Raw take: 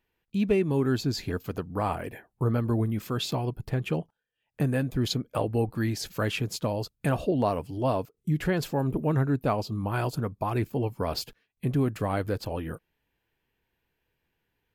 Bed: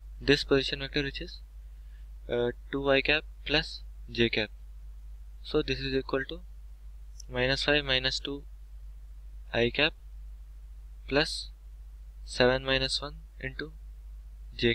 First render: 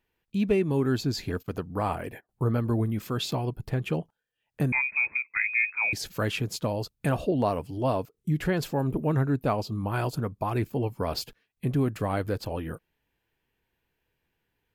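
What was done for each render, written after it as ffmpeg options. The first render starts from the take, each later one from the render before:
-filter_complex "[0:a]asettb=1/sr,asplit=3[s0][s1][s2];[s0]atrim=end=1.354[s3];[s1]atrim=start=1.35:end=2.29,asetpts=PTS-STARTPTS,afade=t=in:d=0.004:c=qsin,afade=t=out:st=0.936:d=0.004:c=qsin,agate=range=0.0891:threshold=0.00501:ratio=16:release=100:detection=peak[s4];[s2]atrim=start=2.286[s5];[s3][s4]acrossfade=d=0.004:c1=hsin:c2=qsin[s6];[s6][s5]acrossfade=d=0.004:c1=qsin:c2=hsin,asettb=1/sr,asplit=3[s7][s8][s9];[s7]atrim=end=4.724[s10];[s8]atrim=start=4.72:end=5.93,asetpts=PTS-STARTPTS,afade=t=in:d=0.004:c=qsin,afade=t=out:st=1.206:d=0.004:c=qsin,lowpass=f=2200:t=q:w=0.5098,lowpass=f=2200:t=q:w=0.6013,lowpass=f=2200:t=q:w=0.9,lowpass=f=2200:t=q:w=2.563,afreqshift=-2600[s11];[s9]atrim=start=5.926[s12];[s10][s11]acrossfade=d=0.004:c1=hsin:c2=qsin[s13];[s13][s12]acrossfade=d=0.004:c1=qsin:c2=hsin"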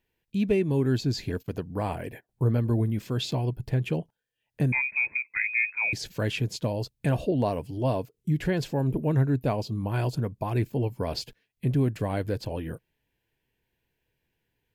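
-filter_complex "[0:a]acrossover=split=8200[s0][s1];[s1]acompressor=threshold=0.002:ratio=4:attack=1:release=60[s2];[s0][s2]amix=inputs=2:normalize=0,equalizer=f=125:t=o:w=0.33:g=4,equalizer=f=800:t=o:w=0.33:g=-3,equalizer=f=1250:t=o:w=0.33:g=-11"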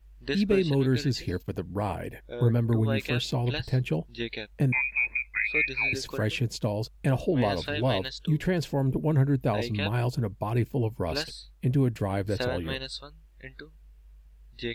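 -filter_complex "[1:a]volume=0.422[s0];[0:a][s0]amix=inputs=2:normalize=0"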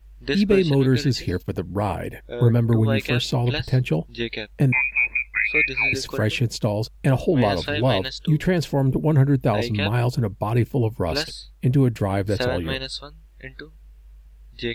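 -af "volume=2"

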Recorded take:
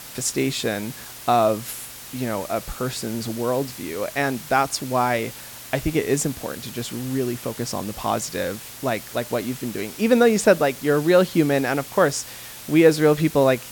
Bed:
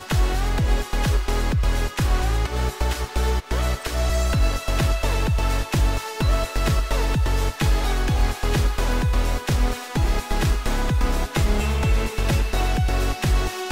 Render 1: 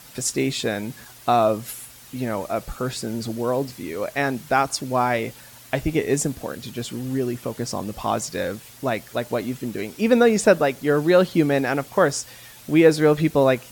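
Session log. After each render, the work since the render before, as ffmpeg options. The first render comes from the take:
-af "afftdn=nr=8:nf=-39"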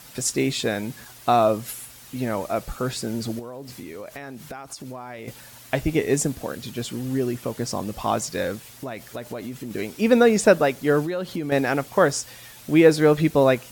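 -filter_complex "[0:a]asettb=1/sr,asplit=3[s0][s1][s2];[s0]atrim=end=3.394[s3];[s1]atrim=start=3.39:end=5.28,asetpts=PTS-STARTPTS,afade=t=in:d=0.004:c=qsin,afade=t=out:st=1.886:d=0.004:c=qsin,acompressor=threshold=0.0251:ratio=16:attack=3.2:release=140:knee=1:detection=peak[s4];[s2]atrim=start=5.276[s5];[s3][s4]acrossfade=d=0.004:c1=hsin:c2=qsin[s6];[s6][s5]acrossfade=d=0.004:c1=qsin:c2=hsin,asettb=1/sr,asplit=3[s7][s8][s9];[s7]atrim=end=8.704[s10];[s8]atrim=start=8.7:end=9.71,asetpts=PTS-STARTPTS,afade=t=in:d=0.004:c=qsin,afade=t=out:st=1.006:d=0.004:c=qsin,acompressor=threshold=0.0355:ratio=5:attack=3.2:release=140:knee=1:detection=peak[s11];[s9]atrim=start=9.706[s12];[s10][s11]acrossfade=d=0.004:c1=hsin:c2=qsin[s13];[s13][s12]acrossfade=d=0.004:c1=qsin:c2=hsin,asettb=1/sr,asplit=3[s14][s15][s16];[s14]atrim=end=11.034[s17];[s15]atrim=start=11.03:end=11.52,asetpts=PTS-STARTPTS,afade=t=in:d=0.004:c=qsin,afade=t=out:st=0.486:d=0.004:c=qsin,acompressor=threshold=0.0562:ratio=5:attack=3.2:release=140:knee=1:detection=peak[s18];[s16]atrim=start=11.516[s19];[s17][s18]acrossfade=d=0.004:c1=hsin:c2=qsin[s20];[s20][s19]acrossfade=d=0.004:c1=qsin:c2=hsin"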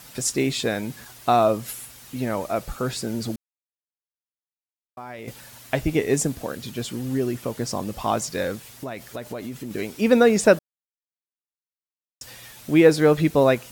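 -filter_complex "[0:a]asplit=5[s0][s1][s2][s3][s4];[s0]atrim=end=3.36,asetpts=PTS-STARTPTS,afade=t=out:st=3.356:d=0.004:c=hsin[s5];[s1]atrim=start=3.36:end=4.97,asetpts=PTS-STARTPTS,volume=0[s6];[s2]atrim=start=4.97:end=10.59,asetpts=PTS-STARTPTS,afade=t=in:d=0.004:c=hsin,afade=t=out:st=5.616:d=0.004:c=hsin[s7];[s3]atrim=start=10.59:end=12.21,asetpts=PTS-STARTPTS,volume=0[s8];[s4]atrim=start=12.21,asetpts=PTS-STARTPTS,afade=t=in:d=0.004:c=hsin[s9];[s5][s6][s7][s8][s9]concat=n=5:v=0:a=1"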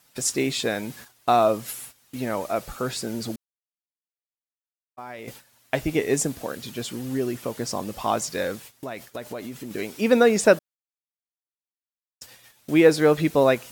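-af "agate=range=0.178:threshold=0.00891:ratio=16:detection=peak,lowshelf=f=170:g=-7.5"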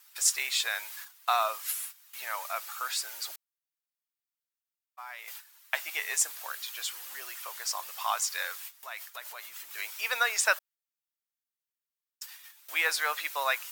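-af "highpass=f=1000:w=0.5412,highpass=f=1000:w=1.3066,equalizer=f=15000:t=o:w=0.29:g=9"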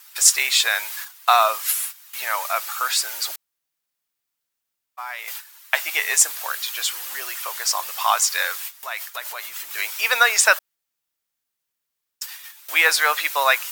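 -af "volume=3.55,alimiter=limit=0.891:level=0:latency=1"

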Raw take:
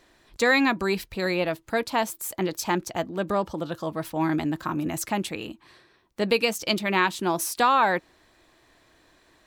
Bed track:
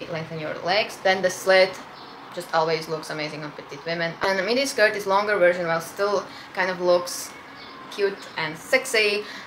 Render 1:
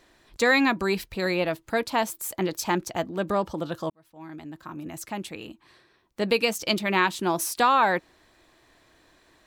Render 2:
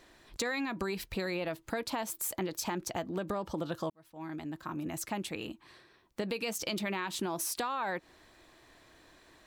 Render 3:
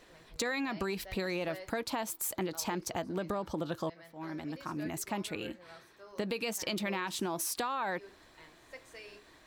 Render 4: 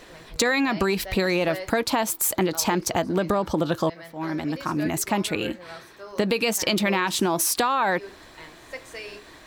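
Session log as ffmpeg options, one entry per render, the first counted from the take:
-filter_complex "[0:a]asplit=2[s0][s1];[s0]atrim=end=3.9,asetpts=PTS-STARTPTS,afade=t=out:st=3.896:d=0.004:c=hsin[s2];[s1]atrim=start=3.9,asetpts=PTS-STARTPTS,afade=t=in:d=2.61[s3];[s2][s3]concat=n=2:v=0:a=1"
-af "alimiter=limit=0.112:level=0:latency=1:release=82,acompressor=threshold=0.0282:ratio=6"
-filter_complex "[1:a]volume=0.0316[s0];[0:a][s0]amix=inputs=2:normalize=0"
-af "volume=3.98"

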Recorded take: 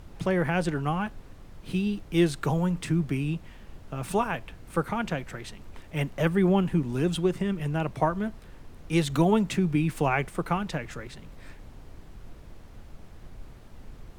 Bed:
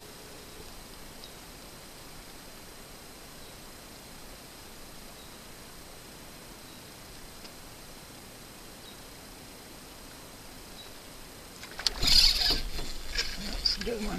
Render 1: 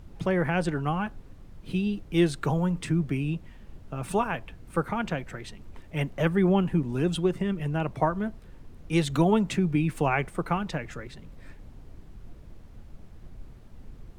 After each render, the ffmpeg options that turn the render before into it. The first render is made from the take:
-af "afftdn=nr=6:nf=-48"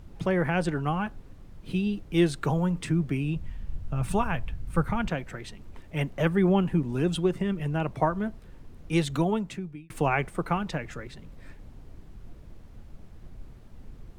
-filter_complex "[0:a]asplit=3[s0][s1][s2];[s0]afade=t=out:st=3.35:d=0.02[s3];[s1]asubboost=boost=4.5:cutoff=150,afade=t=in:st=3.35:d=0.02,afade=t=out:st=5.07:d=0.02[s4];[s2]afade=t=in:st=5.07:d=0.02[s5];[s3][s4][s5]amix=inputs=3:normalize=0,asplit=2[s6][s7];[s6]atrim=end=9.9,asetpts=PTS-STARTPTS,afade=t=out:st=8.92:d=0.98[s8];[s7]atrim=start=9.9,asetpts=PTS-STARTPTS,afade=t=in:d=0.004:c=hsin[s9];[s8][s9]concat=n=2:v=0:a=1"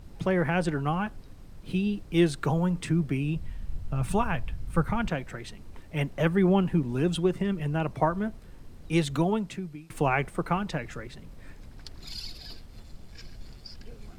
-filter_complex "[1:a]volume=0.112[s0];[0:a][s0]amix=inputs=2:normalize=0"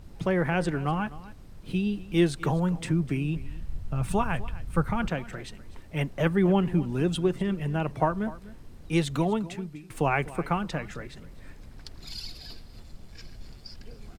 -af "aecho=1:1:251:0.126"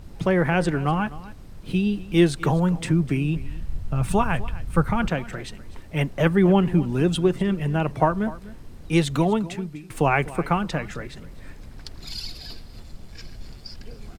-af "volume=1.78"

